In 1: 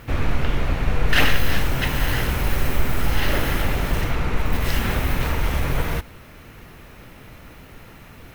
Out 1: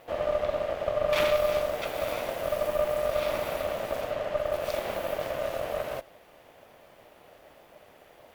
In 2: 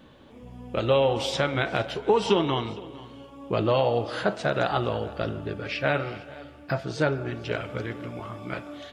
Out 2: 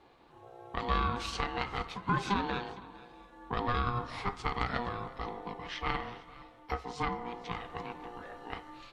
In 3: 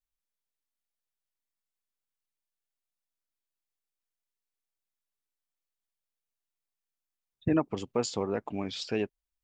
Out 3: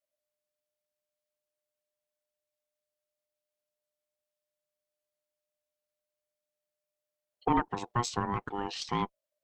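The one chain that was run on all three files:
ring modulation 600 Hz
harmonic generator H 4 −17 dB, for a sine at −3.5 dBFS
normalise the peak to −12 dBFS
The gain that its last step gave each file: −9.0, −6.0, +2.0 decibels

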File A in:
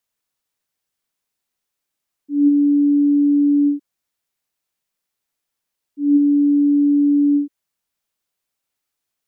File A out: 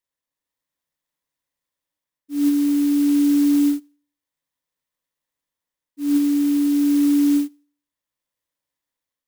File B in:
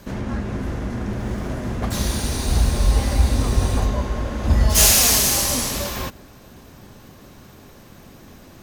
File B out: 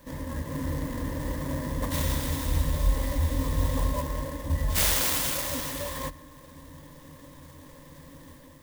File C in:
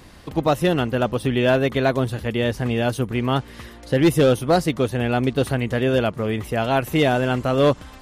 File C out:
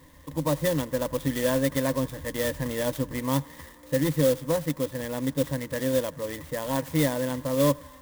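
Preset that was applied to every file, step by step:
EQ curve with evenly spaced ripples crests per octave 1.1, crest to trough 17 dB
automatic gain control gain up to 4 dB
feedback echo with a band-pass in the loop 87 ms, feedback 85%, band-pass 1,300 Hz, level −21.5 dB
converter with an unsteady clock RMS 0.058 ms
normalise the peak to −12 dBFS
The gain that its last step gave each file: −11.0, −10.5, −11.0 decibels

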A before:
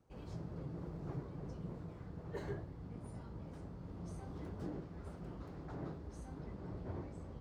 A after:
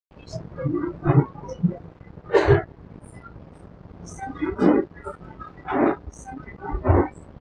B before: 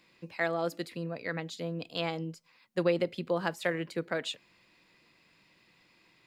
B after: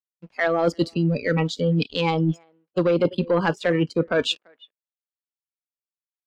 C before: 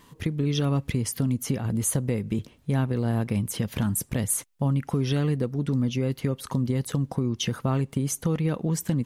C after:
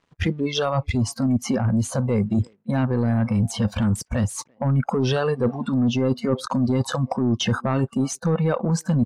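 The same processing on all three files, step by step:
dynamic equaliser 3,400 Hz, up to −3 dB, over −46 dBFS, Q 1.2
in parallel at +3 dB: brickwall limiter −19.5 dBFS
on the sum: dead-zone distortion −44 dBFS
far-end echo of a speakerphone 340 ms, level −20 dB
noise reduction from a noise print of the clip's start 22 dB
soft clipping −16.5 dBFS
reversed playback
downward compressor 5 to 1, threshold −34 dBFS
reversed playback
high-frequency loss of the air 110 metres
loudness normalisation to −23 LKFS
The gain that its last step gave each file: +24.5, +16.0, +15.0 decibels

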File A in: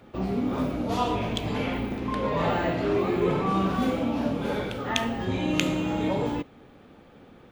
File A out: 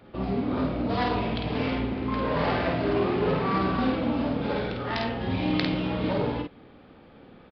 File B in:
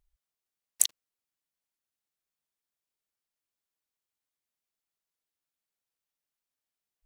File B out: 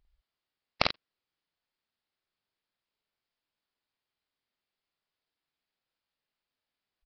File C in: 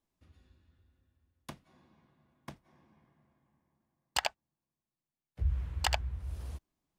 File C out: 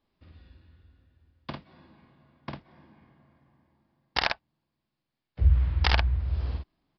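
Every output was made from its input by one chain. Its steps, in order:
phase distortion by the signal itself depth 0.64 ms
double-tracking delay 50 ms −3.5 dB
downsampling to 11,025 Hz
normalise the peak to −6 dBFS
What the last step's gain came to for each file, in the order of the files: −1.0, +4.0, +8.0 decibels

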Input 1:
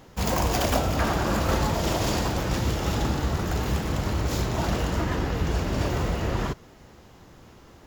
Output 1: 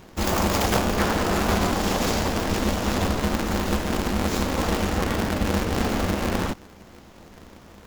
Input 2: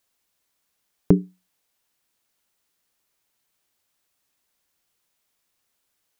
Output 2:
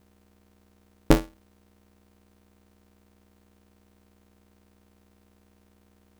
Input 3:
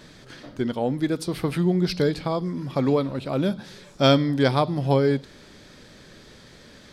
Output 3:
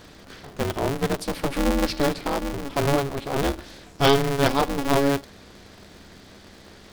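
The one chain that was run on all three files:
mains hum 60 Hz, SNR 27 dB
ring modulator with a square carrier 140 Hz
loudness normalisation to −24 LKFS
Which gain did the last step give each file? +1.5, −1.0, −0.5 decibels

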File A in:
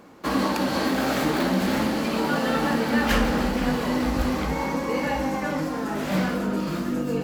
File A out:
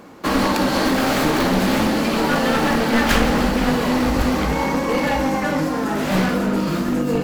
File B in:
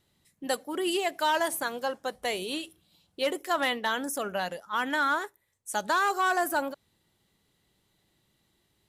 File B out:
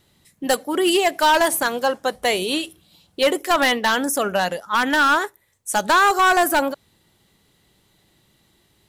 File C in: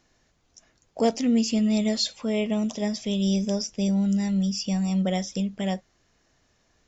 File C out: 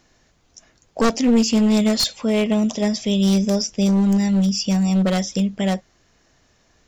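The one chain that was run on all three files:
wavefolder on the positive side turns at −21 dBFS
loudness normalisation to −19 LKFS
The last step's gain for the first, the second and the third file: +6.5, +10.5, +7.0 decibels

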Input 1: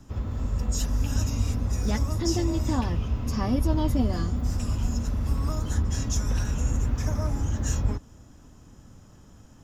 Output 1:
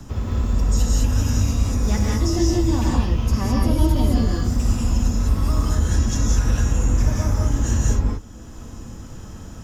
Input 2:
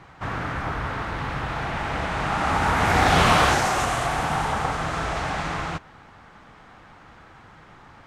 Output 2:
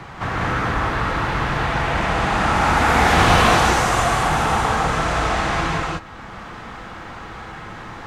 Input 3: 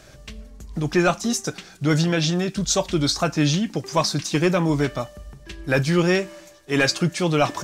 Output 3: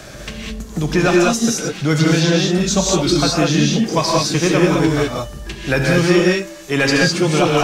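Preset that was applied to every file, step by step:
reverb whose tail is shaped and stops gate 230 ms rising, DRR −3 dB
multiband upward and downward compressor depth 40%
level +1 dB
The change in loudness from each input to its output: +6.5, +5.0, +6.0 LU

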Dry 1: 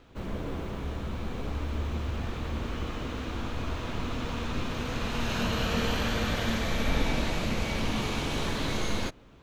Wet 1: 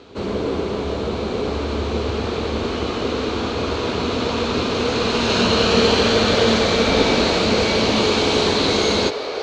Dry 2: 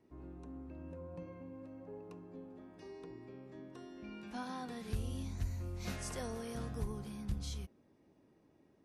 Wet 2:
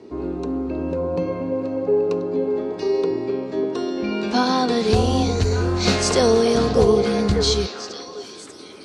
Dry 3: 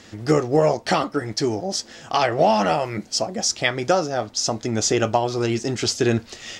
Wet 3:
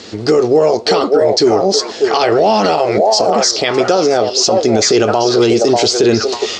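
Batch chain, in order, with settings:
loudspeaker in its box 100–7,700 Hz, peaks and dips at 140 Hz −10 dB, 420 Hz +9 dB, 1,800 Hz −5 dB, 4,300 Hz +8 dB
echo through a band-pass that steps 592 ms, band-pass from 600 Hz, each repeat 1.4 octaves, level −3 dB
brickwall limiter −14.5 dBFS
normalise the peak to −3 dBFS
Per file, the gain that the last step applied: +12.0, +23.5, +11.5 decibels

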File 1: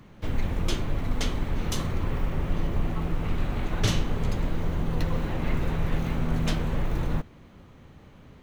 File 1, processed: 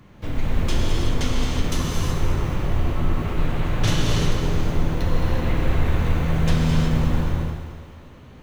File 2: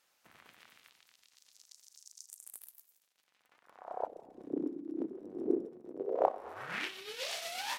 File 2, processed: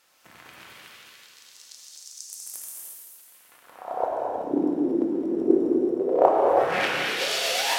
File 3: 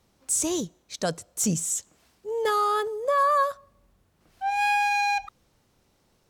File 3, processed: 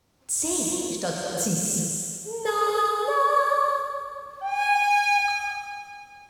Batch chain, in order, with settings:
echo with a time of its own for lows and highs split 340 Hz, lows 150 ms, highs 217 ms, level −9 dB
reverb whose tail is shaped and stops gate 400 ms flat, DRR −3 dB
loudness normalisation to −24 LKFS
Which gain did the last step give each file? +0.5, +9.0, −3.0 decibels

